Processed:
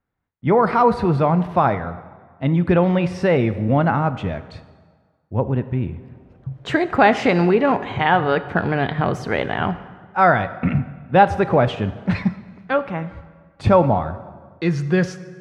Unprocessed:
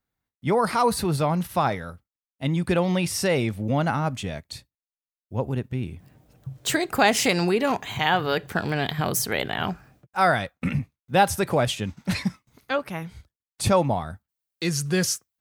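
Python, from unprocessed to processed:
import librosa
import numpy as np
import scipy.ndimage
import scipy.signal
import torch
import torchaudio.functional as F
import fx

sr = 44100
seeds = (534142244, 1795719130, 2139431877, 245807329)

y = scipy.signal.sosfilt(scipy.signal.butter(2, 1900.0, 'lowpass', fs=sr, output='sos'), x)
y = fx.rev_plate(y, sr, seeds[0], rt60_s=1.6, hf_ratio=0.75, predelay_ms=0, drr_db=12.5)
y = y * librosa.db_to_amplitude(6.0)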